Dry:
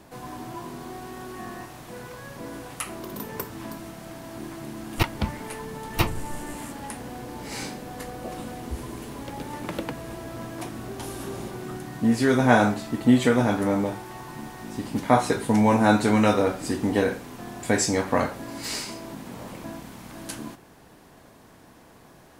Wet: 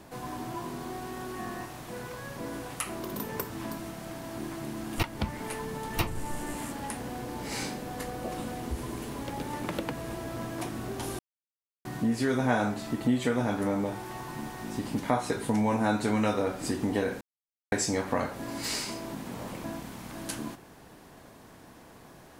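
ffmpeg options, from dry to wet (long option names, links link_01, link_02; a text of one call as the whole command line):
ffmpeg -i in.wav -filter_complex "[0:a]asplit=5[link_01][link_02][link_03][link_04][link_05];[link_01]atrim=end=11.19,asetpts=PTS-STARTPTS,afade=type=out:start_time=11.186:duration=0.004:curve=hsin[link_06];[link_02]atrim=start=11.19:end=11.85,asetpts=PTS-STARTPTS,volume=0[link_07];[link_03]atrim=start=11.85:end=17.21,asetpts=PTS-STARTPTS,afade=type=in:duration=0.004:curve=hsin,afade=type=out:start_time=5.356:duration=0.004:curve=hsin[link_08];[link_04]atrim=start=17.21:end=17.72,asetpts=PTS-STARTPTS,volume=0[link_09];[link_05]atrim=start=17.72,asetpts=PTS-STARTPTS,afade=type=in:duration=0.004:curve=hsin[link_10];[link_06][link_07][link_08][link_09][link_10]concat=n=5:v=0:a=1,acompressor=threshold=-29dB:ratio=2" out.wav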